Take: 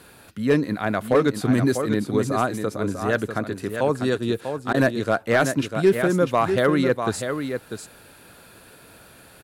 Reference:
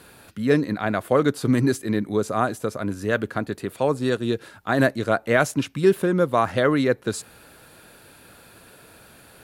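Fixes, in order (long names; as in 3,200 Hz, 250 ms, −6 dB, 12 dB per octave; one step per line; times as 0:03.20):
clipped peaks rebuilt −9.5 dBFS
repair the gap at 0:04.73, 11 ms
echo removal 646 ms −7.5 dB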